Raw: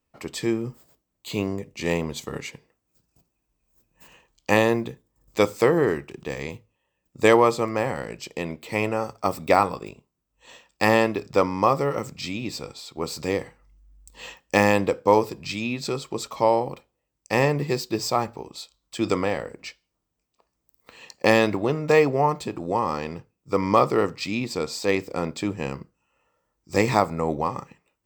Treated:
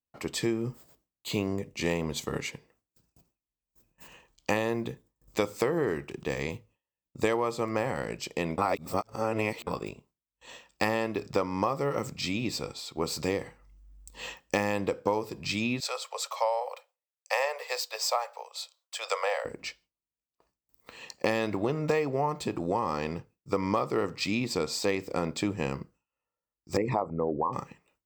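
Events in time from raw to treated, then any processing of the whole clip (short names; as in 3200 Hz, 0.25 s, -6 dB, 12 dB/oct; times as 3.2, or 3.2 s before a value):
8.58–9.67 reverse
15.8–19.45 steep high-pass 500 Hz 72 dB/oct
26.77–27.53 formant sharpening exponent 2
whole clip: compressor 6:1, threshold -24 dBFS; gate with hold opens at -54 dBFS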